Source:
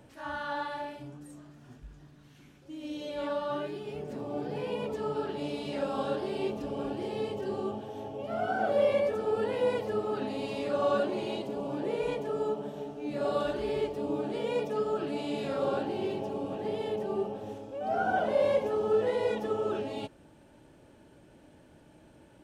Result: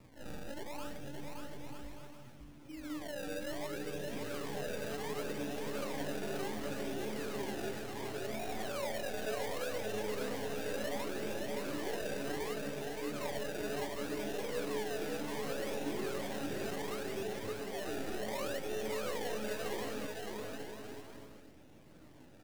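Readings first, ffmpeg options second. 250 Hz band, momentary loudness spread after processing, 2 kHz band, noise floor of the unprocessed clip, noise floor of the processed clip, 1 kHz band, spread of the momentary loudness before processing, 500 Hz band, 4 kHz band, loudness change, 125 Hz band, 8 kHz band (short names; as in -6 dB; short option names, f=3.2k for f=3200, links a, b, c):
-5.5 dB, 10 LU, -2.0 dB, -58 dBFS, -55 dBFS, -9.0 dB, 12 LU, -9.0 dB, -0.5 dB, -7.5 dB, -4.5 dB, n/a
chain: -filter_complex "[0:a]acompressor=threshold=-32dB:ratio=2.5,acrossover=split=570|840[a][b][c];[c]aeval=exprs='abs(val(0))':c=same[d];[a][b][d]amix=inputs=3:normalize=0,acrusher=samples=28:mix=1:aa=0.000001:lfo=1:lforange=28:lforate=0.68,asoftclip=type=tanh:threshold=-31dB,flanger=delay=0.4:depth=9.8:regen=77:speed=0.24:shape=sinusoidal,aecho=1:1:570|940.5|1181|1338|1440:0.631|0.398|0.251|0.158|0.1,volume=1dB"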